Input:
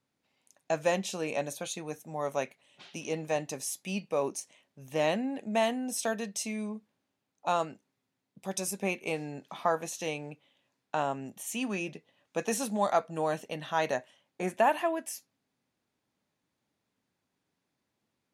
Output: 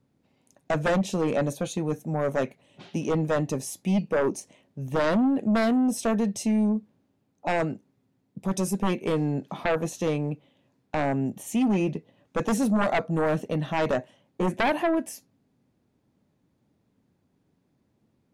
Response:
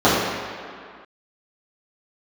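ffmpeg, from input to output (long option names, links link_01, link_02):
-af "tiltshelf=frequency=630:gain=9,aeval=exprs='0.211*sin(PI/2*3.16*val(0)/0.211)':channel_layout=same,volume=-5.5dB"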